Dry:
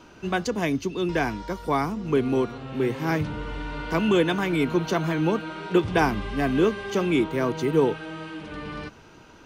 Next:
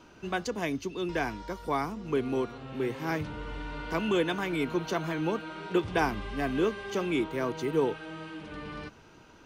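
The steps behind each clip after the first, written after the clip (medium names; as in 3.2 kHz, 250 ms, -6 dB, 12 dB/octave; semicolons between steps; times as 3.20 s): dynamic bell 160 Hz, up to -4 dB, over -36 dBFS, Q 0.8; trim -5 dB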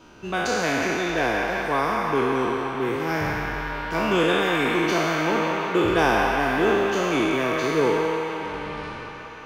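spectral sustain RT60 2.40 s; feedback echo behind a band-pass 177 ms, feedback 77%, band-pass 1.5 kHz, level -3.5 dB; trim +2.5 dB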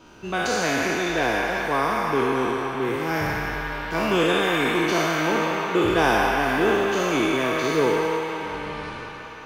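on a send at -12 dB: tilt EQ +4 dB/octave + reverberation, pre-delay 42 ms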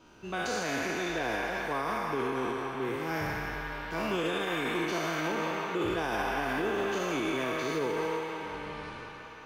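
peak limiter -14 dBFS, peak gain reduction 7 dB; trim -8 dB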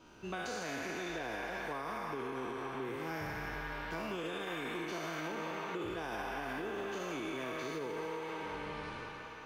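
compression, threshold -35 dBFS, peak gain reduction 8 dB; trim -1.5 dB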